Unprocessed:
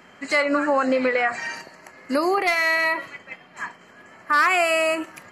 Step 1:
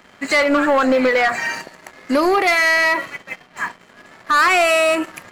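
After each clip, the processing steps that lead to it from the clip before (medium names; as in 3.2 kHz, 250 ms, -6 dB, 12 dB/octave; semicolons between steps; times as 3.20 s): peaking EQ 5.2 kHz -3.5 dB 0.3 oct; waveshaping leveller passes 2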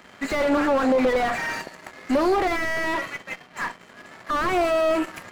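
single-diode clipper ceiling -19.5 dBFS; slew-rate limiter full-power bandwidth 89 Hz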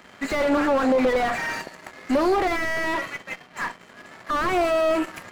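no audible change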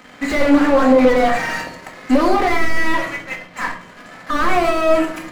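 simulated room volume 710 m³, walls furnished, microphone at 2 m; trim +3.5 dB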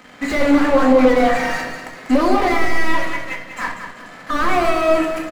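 feedback delay 193 ms, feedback 36%, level -8.5 dB; trim -1 dB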